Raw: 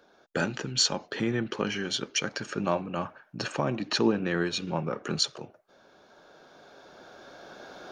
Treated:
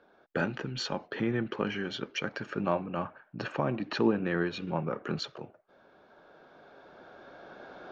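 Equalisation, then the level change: low-pass 2.6 kHz 12 dB/octave; -1.5 dB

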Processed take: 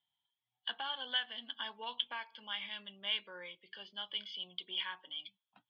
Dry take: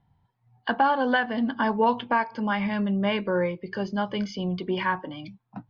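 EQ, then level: band-pass filter 3.3 kHz, Q 14; distance through air 130 m; +12.5 dB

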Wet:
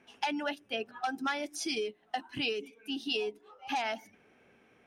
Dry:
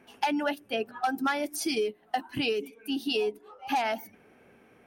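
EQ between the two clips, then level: low-pass 5.7 kHz 12 dB/octave; treble shelf 2.7 kHz +10 dB; band-stop 4.5 kHz, Q 13; -6.5 dB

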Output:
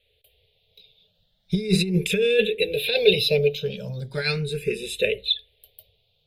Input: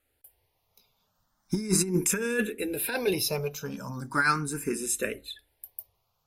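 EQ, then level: FFT filter 190 Hz 0 dB, 290 Hz -25 dB, 430 Hz +6 dB, 630 Hz -1 dB, 1.1 kHz -29 dB, 2.5 kHz +5 dB, 3.7 kHz +13 dB, 5.9 kHz -18 dB, 13 kHz -15 dB; +7.0 dB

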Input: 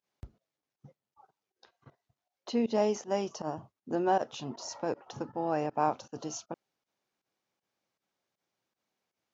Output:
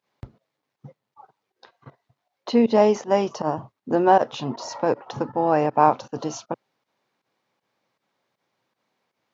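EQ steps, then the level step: graphic EQ 125/250/500/1000/2000/4000 Hz +10/+7/+8/+10/+8/+7 dB; 0.0 dB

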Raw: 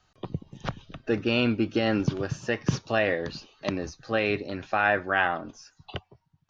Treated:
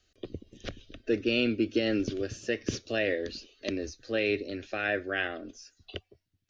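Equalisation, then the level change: peaking EQ 1.2 kHz -6.5 dB 0.69 oct; static phaser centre 370 Hz, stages 4; 0.0 dB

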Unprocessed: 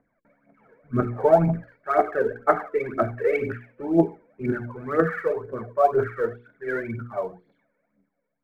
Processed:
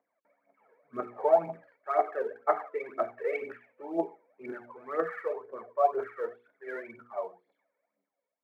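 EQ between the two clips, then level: high-pass 660 Hz 12 dB/octave; peaking EQ 1.5 kHz -9 dB 0.37 oct; treble shelf 2.4 kHz -10 dB; -1.5 dB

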